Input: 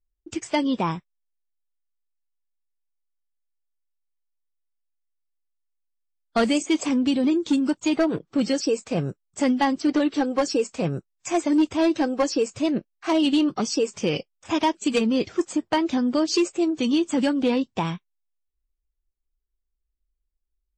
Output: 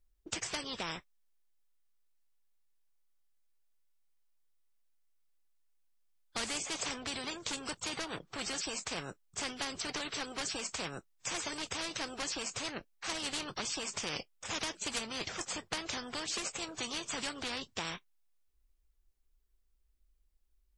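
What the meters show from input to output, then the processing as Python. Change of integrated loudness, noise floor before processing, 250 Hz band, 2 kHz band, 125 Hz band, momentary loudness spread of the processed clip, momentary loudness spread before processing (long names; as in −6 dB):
−14.0 dB, −79 dBFS, −24.5 dB, −6.0 dB, −16.5 dB, 5 LU, 7 LU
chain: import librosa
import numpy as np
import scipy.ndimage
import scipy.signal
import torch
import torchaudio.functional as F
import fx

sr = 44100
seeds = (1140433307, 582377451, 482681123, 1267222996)

y = fx.spectral_comp(x, sr, ratio=4.0)
y = F.gain(torch.from_numpy(y), -7.0).numpy()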